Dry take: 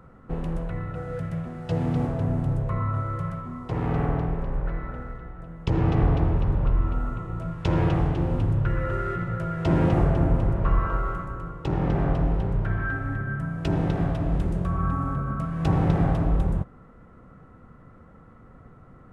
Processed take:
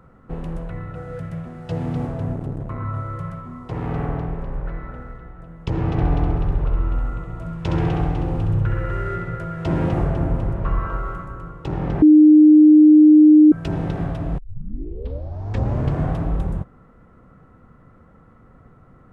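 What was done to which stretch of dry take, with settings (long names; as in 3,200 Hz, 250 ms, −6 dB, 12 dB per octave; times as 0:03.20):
0:02.33–0:02.85: saturating transformer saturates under 260 Hz
0:05.91–0:09.44: flutter between parallel walls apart 11.4 metres, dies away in 0.71 s
0:12.02–0:13.52: beep over 305 Hz −6 dBFS
0:14.38: tape start 1.78 s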